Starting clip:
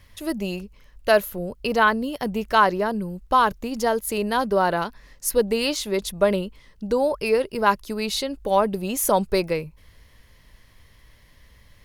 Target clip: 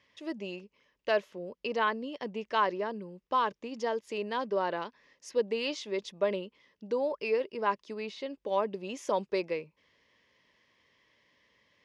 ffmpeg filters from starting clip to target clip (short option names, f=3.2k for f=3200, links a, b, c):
-filter_complex "[0:a]asettb=1/sr,asplit=3[a][b][c];[a]atrim=end=7.404[d];[b]atrim=start=7.4:end=8.26,asetpts=PTS-STARTPTS,afade=t=in:d=0.004:c=qsin,afade=t=out:st=0.856:d=0.004:c=qsin,acrossover=split=2500[e][f];[f]acompressor=threshold=-36dB:ratio=4:attack=1:release=60[g];[e][g]amix=inputs=2:normalize=0[h];[c]atrim=start=8.256[i];[d][h]acrossfade=d=0.004:c1=hsin:c2=qsin[j];[j][i]acrossfade=d=0.004:c1=qsin:c2=hsin,highpass=300,equalizer=f=740:t=q:w=4:g=-7,equalizer=f=1.4k:t=q:w=4:g=-8,equalizer=f=4.2k:t=q:w=4:g=-7,lowpass=f=5.4k:w=0.5412,lowpass=f=5.4k:w=1.3066,volume=-7dB"